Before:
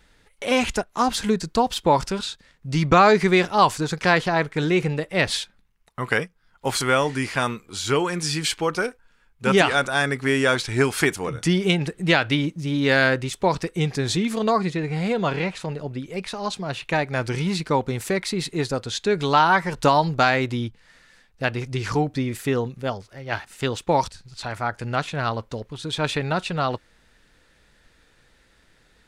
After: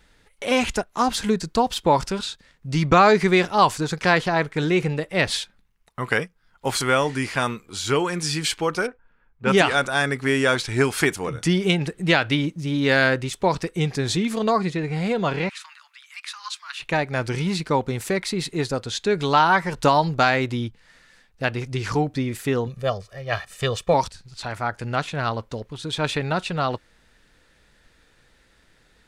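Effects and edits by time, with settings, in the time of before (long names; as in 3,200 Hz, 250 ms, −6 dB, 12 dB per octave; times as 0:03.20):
0:08.87–0:09.70: low-pass that shuts in the quiet parts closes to 1,600 Hz, open at −14.5 dBFS
0:15.49–0:16.80: Butterworth high-pass 1,100 Hz 48 dB per octave
0:22.67–0:23.94: comb filter 1.7 ms, depth 78%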